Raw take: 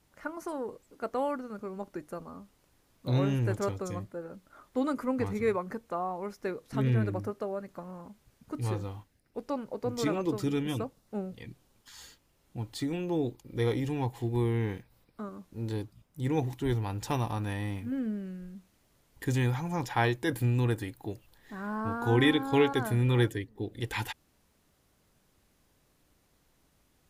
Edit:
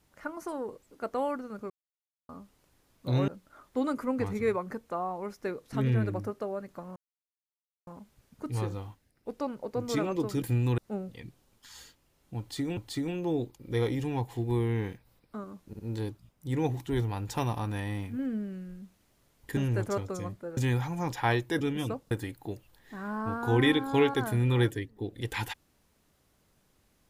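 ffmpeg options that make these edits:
-filter_complex "[0:a]asplit=14[a][b][c][d][e][f][g][h][i][j][k][l][m][n];[a]atrim=end=1.7,asetpts=PTS-STARTPTS,afade=t=out:st=1.696:d=0.004:c=hsin[o];[b]atrim=start=1.7:end=2.29,asetpts=PTS-STARTPTS,volume=0[p];[c]atrim=start=2.29:end=3.282,asetpts=PTS-STARTPTS,afade=t=in:d=0.004:c=hsin[q];[d]atrim=start=4.278:end=7.96,asetpts=PTS-STARTPTS,afade=t=out:st=3.678:d=0.004:c=hsin,apad=pad_dur=0.91[r];[e]atrim=start=7.96:end=10.512,asetpts=PTS-STARTPTS,afade=t=in:d=0.004:c=hsin[s];[f]atrim=start=20.338:end=20.702[t];[g]atrim=start=11.008:end=13.002[u];[h]atrim=start=12.618:end=15.582[v];[i]atrim=start=15.518:end=15.582[w];[j]atrim=start=15.518:end=19.302[x];[k]atrim=start=3.278:end=4.282[y];[l]atrim=start=19.298:end=20.342[z];[m]atrim=start=10.508:end=11.012[aa];[n]atrim=start=20.698[ab];[o][p][q]concat=n=3:v=0:a=1[ac];[r][s]concat=n=2:v=0:a=1[ad];[ac][ad]acrossfade=d=0.004:c1=hsin:c2=hsin[ae];[ae][t]acrossfade=d=0.004:c1=hsin:c2=hsin[af];[af][u]acrossfade=d=0.004:c1=hsin:c2=hsin[ag];[ag][v]acrossfade=d=0.004:c1=hsin:c2=hsin[ah];[ah][w]acrossfade=d=0.004:c1=hsin:c2=hsin[ai];[ai][x]acrossfade=d=0.004:c1=hsin:c2=hsin[aj];[aj][y]acrossfade=d=0.004:c1=hsin:c2=hsin[ak];[ak][z]acrossfade=d=0.004:c1=hsin:c2=hsin[al];[al][aa]acrossfade=d=0.004:c1=hsin:c2=hsin[am];[am][ab]acrossfade=d=0.004:c1=hsin:c2=hsin"

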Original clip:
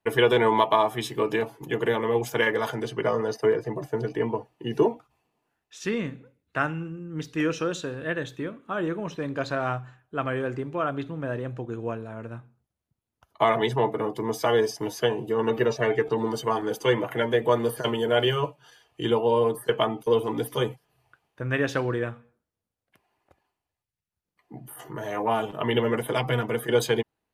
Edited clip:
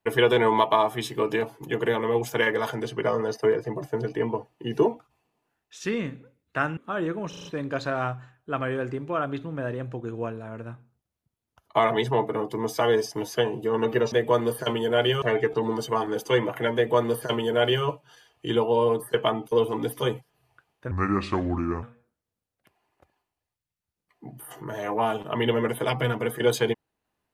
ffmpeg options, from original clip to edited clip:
-filter_complex "[0:a]asplit=10[a][b][c][d][e][f][g][h][i][j];[a]atrim=end=6.772[k];[b]atrim=start=8.578:end=9.142[l];[c]atrim=start=9.098:end=9.142[m];[d]atrim=start=9.098:end=9.142[n];[e]atrim=start=9.098:end=9.142[o];[f]atrim=start=9.098:end=15.772[p];[g]atrim=start=17.298:end=18.402[q];[h]atrim=start=15.768:end=21.464[r];[i]atrim=start=21.46:end=22.11,asetpts=PTS-STARTPTS,asetrate=31311,aresample=44100,atrim=end_sample=40373,asetpts=PTS-STARTPTS[s];[j]atrim=start=22.106[t];[k][l]acrossfade=d=0.004:c1=hsin:c2=hsin[u];[u][m]acrossfade=d=0.004:c1=hsin:c2=hsin[v];[v][n]acrossfade=d=0.004:c1=hsin:c2=hsin[w];[w][o]acrossfade=d=0.004:c1=hsin:c2=hsin[x];[x][p]acrossfade=d=0.004:c1=hsin:c2=hsin[y];[y][q]acrossfade=d=0.004:c1=hsin:c2=hsin[z];[z][r]acrossfade=d=0.004:c1=hsin:c2=hsin[aa];[aa][s]acrossfade=d=0.004:c1=hsin:c2=hsin[ab];[ab][t]acrossfade=d=0.004:c1=hsin:c2=hsin"

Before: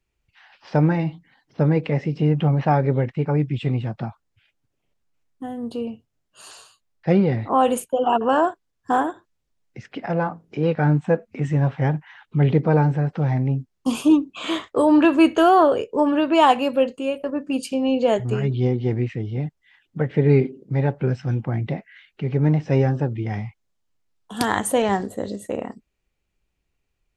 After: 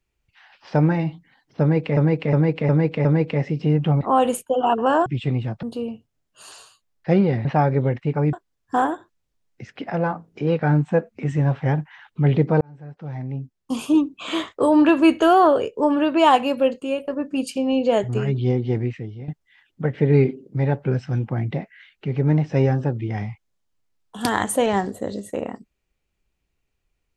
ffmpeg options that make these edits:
-filter_complex "[0:a]asplit=12[a][b][c][d][e][f][g][h][i][j][k][l];[a]atrim=end=1.972[m];[b]atrim=start=1.608:end=1.972[n];[c]atrim=start=1.608:end=1.972[o];[d]atrim=start=1.608:end=1.972[p];[e]atrim=start=1.608:end=2.572[q];[f]atrim=start=7.438:end=8.492[r];[g]atrim=start=3.448:end=4.022[s];[h]atrim=start=5.618:end=7.442[t];[i]atrim=start=2.568:end=3.452[u];[j]atrim=start=8.488:end=12.77,asetpts=PTS-STARTPTS,afade=t=out:st=4.278:d=0.004:c=hsin[v];[k]atrim=start=12.77:end=19.44,asetpts=PTS-STARTPTS,afade=t=in:d=1.68,afade=t=out:st=6.14:d=0.53:silence=0.237137[w];[l]atrim=start=19.44,asetpts=PTS-STARTPTS,afade=t=in:d=0.004:c=hsin:silence=0.237137[x];[m][n]acrossfade=d=0.004:c1=hsin:c2=hsin[y];[y][o]acrossfade=d=0.004:c1=hsin:c2=hsin[z];[z][p]acrossfade=d=0.004:c1=hsin:c2=hsin[aa];[aa][q]acrossfade=d=0.004:c1=hsin:c2=hsin[ab];[ab][r]acrossfade=d=0.004:c1=hsin:c2=hsin[ac];[ac][s]acrossfade=d=0.004:c1=hsin:c2=hsin[ad];[ad][t]acrossfade=d=0.004:c1=hsin:c2=hsin[ae];[ae][u]acrossfade=d=0.004:c1=hsin:c2=hsin[af];[v][w][x]concat=n=3:v=0:a=1[ag];[af][ag]acrossfade=d=0.004:c1=hsin:c2=hsin"

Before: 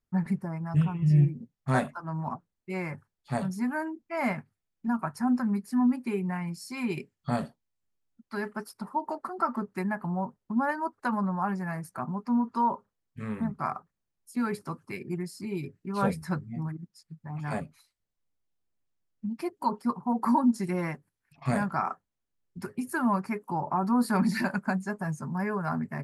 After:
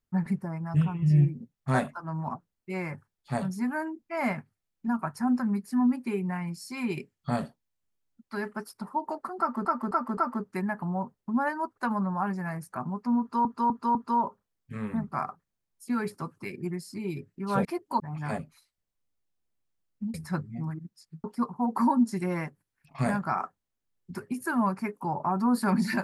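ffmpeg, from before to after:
-filter_complex "[0:a]asplit=11[a][b][c][d][e][f][g][h][i][j][k];[a]atrim=end=9.652[l];[b]atrim=start=9.388:end=9.652[m];[c]atrim=start=9.388:end=9.652[n];[d]atrim=start=9.388:end=12.672[o];[e]atrim=start=12.418:end=12.672[p];[f]atrim=start=12.418:end=12.672[q];[g]atrim=start=12.418:end=16.122[r];[h]atrim=start=19.358:end=19.712[s];[i]atrim=start=17.218:end=19.362[t];[j]atrim=start=16.118:end=17.222[u];[k]atrim=start=19.708[v];[l][m]acrossfade=d=0.004:c1=hsin:c2=hsin[w];[w][n]acrossfade=d=0.004:c1=hsin:c2=hsin[x];[x][o]acrossfade=d=0.004:c1=hsin:c2=hsin[y];[y][p]acrossfade=d=0.004:c1=hsin:c2=hsin[z];[z][q]acrossfade=d=0.004:c1=hsin:c2=hsin[aa];[aa][r]acrossfade=d=0.004:c1=hsin:c2=hsin[ab];[ab][s]acrossfade=d=0.004:c1=hsin:c2=hsin[ac];[ac][t]acrossfade=d=0.004:c1=hsin:c2=hsin[ad];[ad][u]acrossfade=d=0.004:c1=hsin:c2=hsin[ae];[ae][v]acrossfade=d=0.004:c1=hsin:c2=hsin"

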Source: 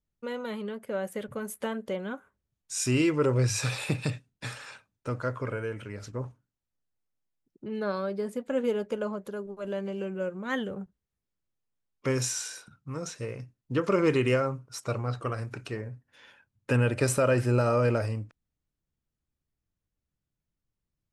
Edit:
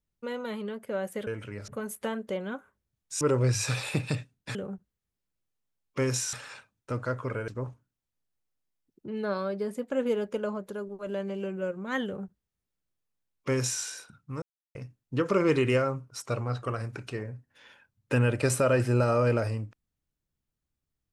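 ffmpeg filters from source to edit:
-filter_complex "[0:a]asplit=9[a][b][c][d][e][f][g][h][i];[a]atrim=end=1.272[j];[b]atrim=start=5.648:end=6.062[k];[c]atrim=start=1.268:end=2.802[l];[d]atrim=start=3.158:end=4.502[m];[e]atrim=start=10.628:end=12.412[n];[f]atrim=start=4.498:end=5.652[o];[g]atrim=start=6.058:end=13,asetpts=PTS-STARTPTS,afade=t=out:st=6.938:d=0.004:c=hsin[p];[h]atrim=start=13:end=13.33,asetpts=PTS-STARTPTS,volume=0[q];[i]atrim=start=13.33,asetpts=PTS-STARTPTS,afade=t=in:d=0.004:c=hsin[r];[j][k]acrossfade=d=0.004:c1=hsin:c2=hsin[s];[s][l]acrossfade=d=0.004:c1=hsin:c2=hsin[t];[t][m]acrossfade=d=0.004:c1=hsin:c2=hsin[u];[u][n]acrossfade=d=0.004:c1=hsin:c2=hsin[v];[v][o]acrossfade=d=0.004:c1=hsin:c2=hsin[w];[p][q][r]concat=n=3:v=0:a=1[x];[w][x]acrossfade=d=0.004:c1=hsin:c2=hsin"

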